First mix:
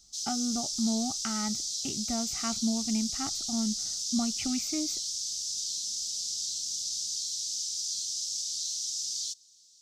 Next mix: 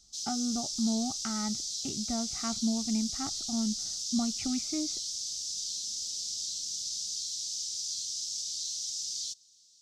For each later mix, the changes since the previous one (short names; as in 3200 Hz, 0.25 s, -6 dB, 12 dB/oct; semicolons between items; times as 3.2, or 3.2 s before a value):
speech: add air absorption 370 m; master: add high shelf 7900 Hz -6.5 dB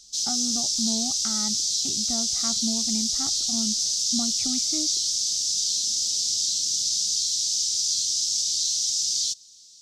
background +11.0 dB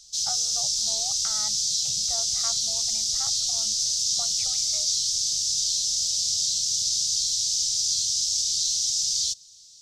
background: add low shelf 310 Hz +7.5 dB; master: add elliptic band-stop 170–510 Hz, stop band 40 dB